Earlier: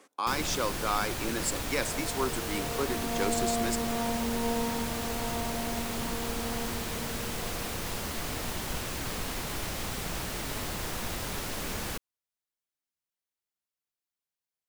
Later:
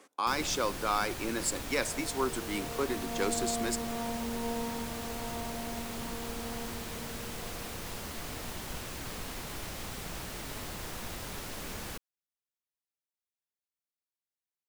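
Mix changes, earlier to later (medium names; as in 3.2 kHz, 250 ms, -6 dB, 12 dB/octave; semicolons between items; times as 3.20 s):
first sound -5.5 dB; second sound -4.5 dB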